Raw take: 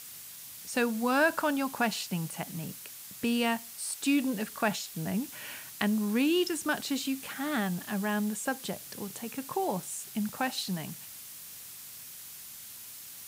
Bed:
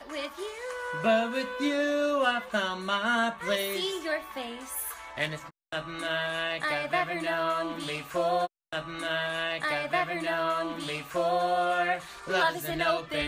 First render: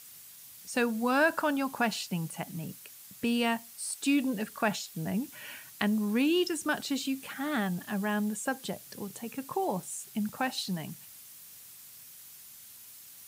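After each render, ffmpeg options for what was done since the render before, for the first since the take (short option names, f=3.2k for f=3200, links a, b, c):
-af "afftdn=nr=6:nf=-46"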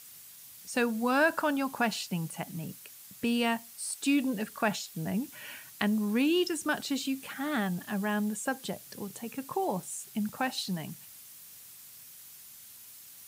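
-af anull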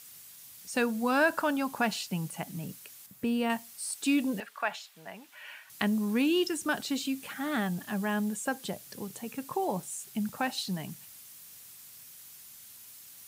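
-filter_complex "[0:a]asettb=1/sr,asplit=3[a][b][c];[a]atrim=end=3.064[d];[b]atrim=start=3.06:end=3.5,asetpts=PTS-STARTPTS,afade=t=in:d=0.004:c=qsin,afade=t=out:st=0.436:d=0.004:c=qsin,equalizer=f=5.3k:w=0.33:g=-8.5[e];[c]atrim=start=3.496[f];[d][e]acrossfade=d=0.004:c1=hsin:c2=qsin[g];[g][f]acrossfade=d=0.004:c1=qsin:c2=hsin,asettb=1/sr,asplit=3[h][i][j];[h]atrim=end=4.404[k];[i]atrim=start=4.4:end=5.7,asetpts=PTS-STARTPTS,afade=t=in:d=0.004:c=qsin,afade=t=out:st=1.296:d=0.004:c=qsin,acrossover=split=590 3700:gain=0.0794 1 0.251[l][m][n];[l][m][n]amix=inputs=3:normalize=0[o];[j]atrim=start=5.696[p];[k][o]acrossfade=d=0.004:c1=hsin:c2=qsin[q];[q][p]acrossfade=d=0.004:c1=qsin:c2=hsin"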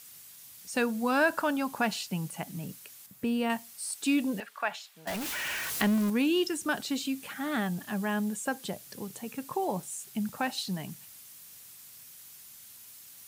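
-filter_complex "[0:a]asettb=1/sr,asplit=3[a][b][c];[a]atrim=end=5.074[d];[b]atrim=start=5.07:end=6.1,asetpts=PTS-STARTPTS,afade=t=in:d=0.004:c=qsin,afade=t=out:st=1.026:d=0.004:c=qsin,aeval=exprs='val(0)+0.5*0.0335*sgn(val(0))':c=same[e];[c]atrim=start=6.096[f];[d][e]acrossfade=d=0.004:c1=hsin:c2=qsin[g];[g][f]acrossfade=d=0.004:c1=qsin:c2=hsin"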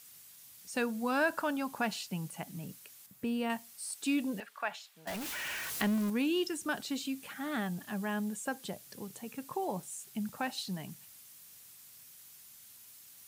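-af "volume=-4.5dB"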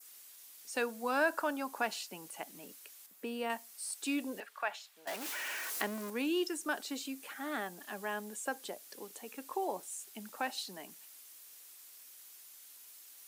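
-af "highpass=f=300:w=0.5412,highpass=f=300:w=1.3066,adynamicequalizer=threshold=0.00224:dfrequency=3200:dqfactor=1.4:tfrequency=3200:tqfactor=1.4:attack=5:release=100:ratio=0.375:range=2.5:mode=cutabove:tftype=bell"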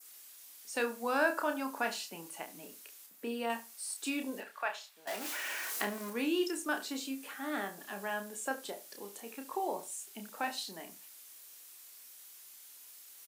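-filter_complex "[0:a]asplit=2[a][b];[b]adelay=30,volume=-6dB[c];[a][c]amix=inputs=2:normalize=0,asplit=2[d][e];[e]adelay=70,lowpass=f=2k:p=1,volume=-13.5dB,asplit=2[f][g];[g]adelay=70,lowpass=f=2k:p=1,volume=0.18[h];[d][f][h]amix=inputs=3:normalize=0"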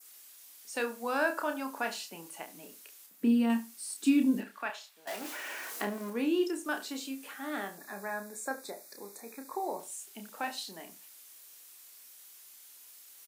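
-filter_complex "[0:a]asettb=1/sr,asplit=3[a][b][c];[a]atrim=end=3.204[d];[b]atrim=start=3.2:end=4.7,asetpts=PTS-STARTPTS,afade=t=in:d=0.004:c=qsin,afade=t=out:st=1.496:d=0.004:c=qsin,lowshelf=f=350:t=q:w=1.5:g=14[e];[c]atrim=start=4.696[f];[d][e]acrossfade=d=0.004:c1=hsin:c2=qsin[g];[g][f]acrossfade=d=0.004:c1=qsin:c2=hsin,asettb=1/sr,asplit=3[h][i][j];[h]atrim=end=5.214[k];[i]atrim=start=5.21:end=6.65,asetpts=PTS-STARTPTS,afade=t=in:d=0.004:c=qsin,afade=t=out:st=1.436:d=0.004:c=qsin,tiltshelf=f=1.1k:g=4[l];[j]atrim=start=6.646[m];[k][l]acrossfade=d=0.004:c1=hsin:c2=qsin[n];[n][m]acrossfade=d=0.004:c1=qsin:c2=hsin,asettb=1/sr,asplit=3[o][p][q];[o]atrim=end=7.774[r];[p]atrim=start=7.77:end=9.8,asetpts=PTS-STARTPTS,afade=t=in:d=0.004:c=qsin,afade=t=out:st=2.026:d=0.004:c=qsin,asuperstop=centerf=3000:order=12:qfactor=2.8[s];[q]atrim=start=9.796[t];[r][s]acrossfade=d=0.004:c1=hsin:c2=qsin[u];[u][t]acrossfade=d=0.004:c1=qsin:c2=hsin"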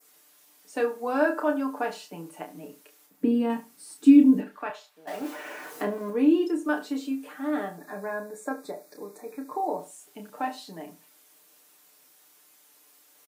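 -af "tiltshelf=f=1.4k:g=7.5,aecho=1:1:6.7:0.73"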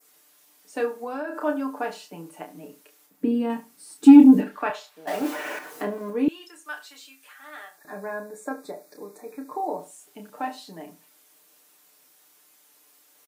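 -filter_complex "[0:a]asettb=1/sr,asplit=3[a][b][c];[a]atrim=end=0.964[d];[b]atrim=start=0.96:end=1.41,asetpts=PTS-STARTPTS,afade=t=in:d=0.004:c=qsin,afade=t=out:st=0.446:d=0.004:c=qsin,acompressor=threshold=-28dB:ratio=6:attack=3.2:release=140:knee=1:detection=peak[e];[c]atrim=start=1.406[f];[d][e]acrossfade=d=0.004:c1=hsin:c2=qsin[g];[g][f]acrossfade=d=0.004:c1=qsin:c2=hsin,asettb=1/sr,asplit=3[h][i][j];[h]atrim=end=4.034[k];[i]atrim=start=4.03:end=5.59,asetpts=PTS-STARTPTS,afade=t=in:d=0.004:c=qsin,afade=t=out:st=1.556:d=0.004:c=qsin,acontrast=78[l];[j]atrim=start=5.586[m];[k][l]acrossfade=d=0.004:c1=hsin:c2=qsin[n];[n][m]acrossfade=d=0.004:c1=qsin:c2=hsin,asettb=1/sr,asplit=3[o][p][q];[o]atrim=end=6.284[r];[p]atrim=start=6.28:end=7.85,asetpts=PTS-STARTPTS,afade=t=in:d=0.004:c=qsin,afade=t=out:st=1.566:d=0.004:c=qsin,highpass=1.5k[s];[q]atrim=start=7.846[t];[r][s]acrossfade=d=0.004:c1=hsin:c2=qsin[u];[u][t]acrossfade=d=0.004:c1=qsin:c2=hsin"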